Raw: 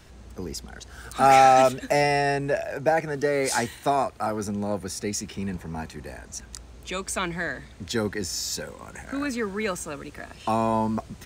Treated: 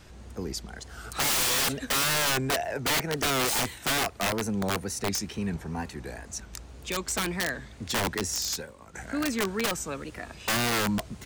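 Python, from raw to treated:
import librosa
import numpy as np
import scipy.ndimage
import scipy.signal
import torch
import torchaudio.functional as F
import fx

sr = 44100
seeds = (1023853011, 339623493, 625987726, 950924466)

y = fx.wow_flutter(x, sr, seeds[0], rate_hz=2.1, depth_cents=110.0)
y = (np.mod(10.0 ** (20.5 / 20.0) * y + 1.0, 2.0) - 1.0) / 10.0 ** (20.5 / 20.0)
y = fx.upward_expand(y, sr, threshold_db=-42.0, expansion=1.5, at=(8.54, 8.94), fade=0.02)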